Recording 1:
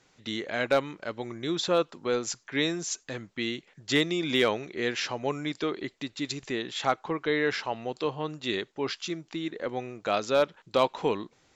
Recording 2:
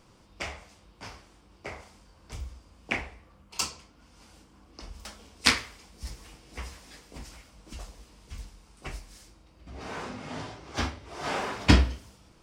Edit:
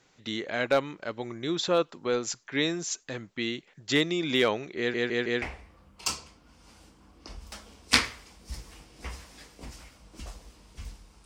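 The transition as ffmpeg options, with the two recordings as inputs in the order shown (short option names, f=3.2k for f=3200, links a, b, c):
-filter_complex "[0:a]apad=whole_dur=11.25,atrim=end=11.25,asplit=4[a][b][c][d];[a]atrim=end=4.942[e];[b]atrim=start=4.778:end=4.942[f];[c]atrim=start=4.778:end=4.942[g];[d]atrim=start=4.778:end=4.942[h];[1:a]atrim=start=2.948:end=8.78[i];[e][f]acrossfade=d=0.004:c1=hsin:c2=hsin[j];[j][g]acrossfade=d=0.004:c1=hsin:c2=hsin[k];[k][h]acrossfade=d=0.004:c1=hsin:c2=hsin[l];[l][i]acrossfade=d=0.004:c1=hsin:c2=hsin"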